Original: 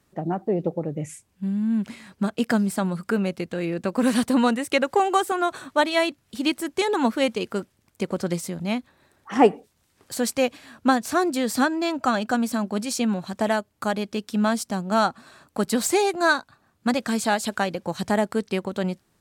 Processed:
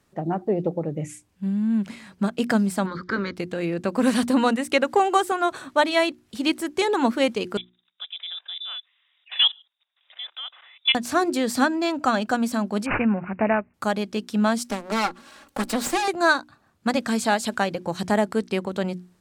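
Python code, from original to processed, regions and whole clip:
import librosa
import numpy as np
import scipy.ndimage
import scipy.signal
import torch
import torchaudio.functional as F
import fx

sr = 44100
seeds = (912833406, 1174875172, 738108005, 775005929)

y = fx.spec_clip(x, sr, under_db=19, at=(2.85, 3.35), fade=0.02)
y = fx.air_absorb(y, sr, metres=160.0, at=(2.85, 3.35), fade=0.02)
y = fx.fixed_phaser(y, sr, hz=2700.0, stages=6, at=(2.85, 3.35), fade=0.02)
y = fx.chain(y, sr, fx.freq_invert(carrier_hz=3700),
    fx.highpass(hz=680.0, slope=24),
    fx.level_steps(step_db=17), at=(7.57, 10.95))
y = fx.chain(y, sr, fx.bass_treble(bass_db=2, treble_db=5),
    fx.resample_bad(factor=8, down='none', up='filtered'), at=(12.86, 13.74))
y = fx.chain(y, sr, fx.lower_of_two(delay_ms=3.6),
    fx.low_shelf(hz=83.0, db=-10.0),
    fx.band_squash(depth_pct=40), at=(14.64, 16.08))
y = fx.high_shelf(y, sr, hz=12000.0, db=-6.5)
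y = fx.hum_notches(y, sr, base_hz=60, count=6)
y = y * librosa.db_to_amplitude(1.0)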